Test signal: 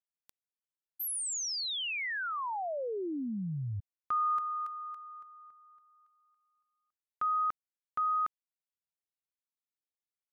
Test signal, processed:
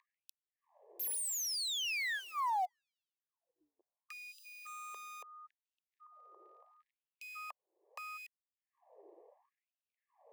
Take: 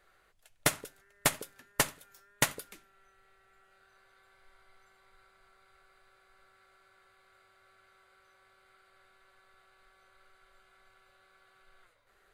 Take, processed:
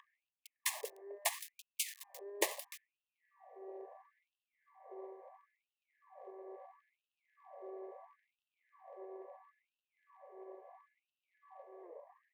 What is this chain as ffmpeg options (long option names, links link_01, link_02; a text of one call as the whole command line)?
ffmpeg -i in.wav -filter_complex "[0:a]acrossover=split=560|1200[link_01][link_02][link_03];[link_01]acompressor=mode=upward:threshold=-40dB:ratio=4:attack=0.42:release=264:knee=2.83:detection=peak[link_04];[link_03]acrusher=bits=6:dc=4:mix=0:aa=0.000001[link_05];[link_04][link_02][link_05]amix=inputs=3:normalize=0,acrossover=split=430[link_06][link_07];[link_07]acompressor=threshold=-47dB:ratio=2:attack=0.29:release=67:knee=2.83:detection=peak[link_08];[link_06][link_08]amix=inputs=2:normalize=0,asuperstop=centerf=1400:order=8:qfactor=2.8,afftfilt=real='re*gte(b*sr/1024,310*pow(2600/310,0.5+0.5*sin(2*PI*0.74*pts/sr)))':imag='im*gte(b*sr/1024,310*pow(2600/310,0.5+0.5*sin(2*PI*0.74*pts/sr)))':win_size=1024:overlap=0.75,volume=8.5dB" out.wav